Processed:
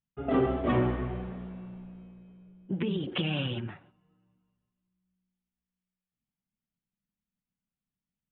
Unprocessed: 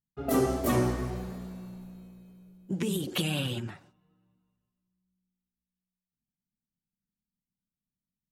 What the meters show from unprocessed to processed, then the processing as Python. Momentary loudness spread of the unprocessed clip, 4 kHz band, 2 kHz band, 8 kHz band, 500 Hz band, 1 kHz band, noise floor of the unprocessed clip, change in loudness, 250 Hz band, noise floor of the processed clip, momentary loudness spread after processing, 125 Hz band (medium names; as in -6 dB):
18 LU, -1.5 dB, 0.0 dB, under -35 dB, 0.0 dB, 0.0 dB, under -85 dBFS, -0.5 dB, 0.0 dB, under -85 dBFS, 18 LU, 0.0 dB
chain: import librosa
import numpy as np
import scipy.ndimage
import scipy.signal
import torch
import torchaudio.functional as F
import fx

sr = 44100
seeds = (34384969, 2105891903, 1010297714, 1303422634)

y = scipy.signal.sosfilt(scipy.signal.butter(12, 3400.0, 'lowpass', fs=sr, output='sos'), x)